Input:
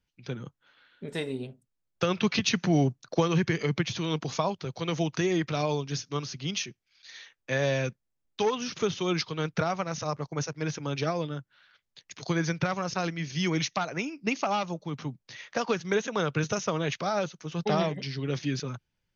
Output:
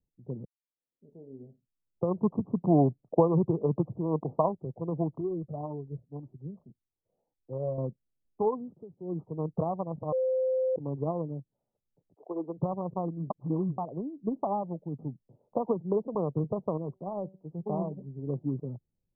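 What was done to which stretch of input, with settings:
0:00.45–0:02.09: fade in quadratic
0:02.67–0:04.46: dynamic equaliser 600 Hz, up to +5 dB, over −39 dBFS, Q 0.8
0:05.18–0:07.78: flanger whose copies keep moving one way rising 1.8 Hz
0:08.55–0:09.25: duck −18 dB, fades 0.30 s
0:10.12–0:10.76: beep over 518 Hz −22.5 dBFS
0:12.14–0:12.57: high-pass filter 480 Hz → 230 Hz 24 dB per octave
0:13.30–0:13.78: reverse
0:15.51–0:16.15: multiband upward and downward compressor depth 70%
0:16.77–0:18.27: tuned comb filter 190 Hz, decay 0.34 s, mix 40%
whole clip: adaptive Wiener filter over 41 samples; Butterworth low-pass 1,100 Hz 96 dB per octave; parametric band 78 Hz −3 dB 1.5 octaves

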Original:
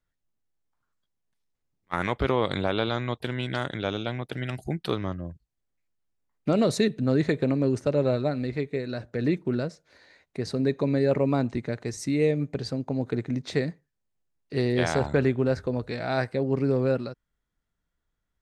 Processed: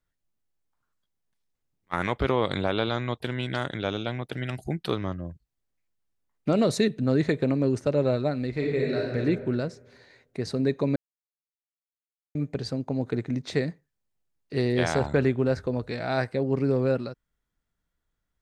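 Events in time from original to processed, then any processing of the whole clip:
0:08.51–0:09.16: thrown reverb, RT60 1.6 s, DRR −3 dB
0:10.96–0:12.35: silence

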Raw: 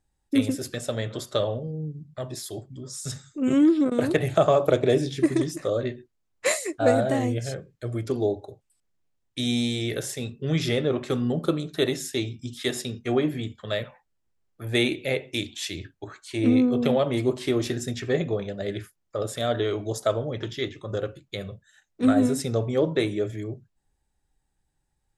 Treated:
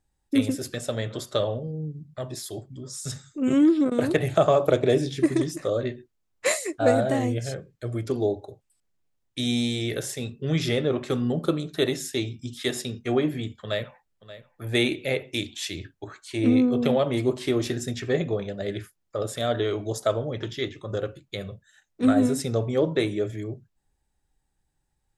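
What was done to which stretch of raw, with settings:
0:13.62–0:14.64: delay throw 580 ms, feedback 15%, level −15.5 dB

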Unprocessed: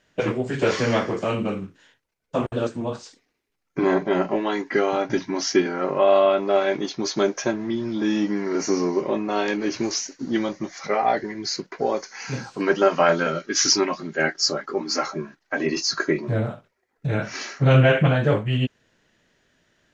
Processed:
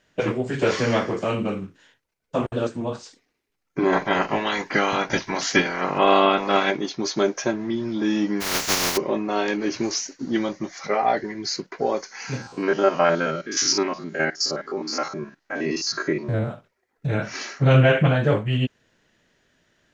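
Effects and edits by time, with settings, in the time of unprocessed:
0:03.92–0:06.70: ceiling on every frequency bin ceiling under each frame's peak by 18 dB
0:08.40–0:08.96: compressing power law on the bin magnitudes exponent 0.19
0:12.37–0:16.50: spectrum averaged block by block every 50 ms

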